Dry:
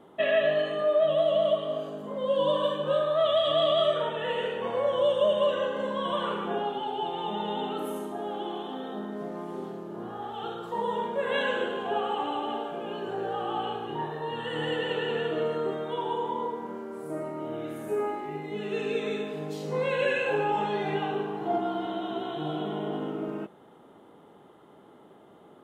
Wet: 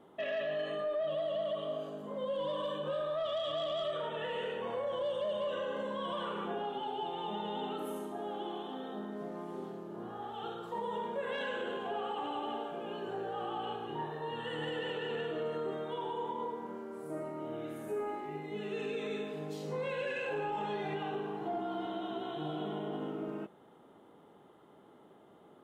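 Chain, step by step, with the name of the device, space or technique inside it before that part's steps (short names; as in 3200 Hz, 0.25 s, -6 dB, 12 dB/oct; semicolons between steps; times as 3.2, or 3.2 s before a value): soft clipper into limiter (soft clip -15.5 dBFS, distortion -24 dB; limiter -23.5 dBFS, peak gain reduction 6.5 dB); gain -5.5 dB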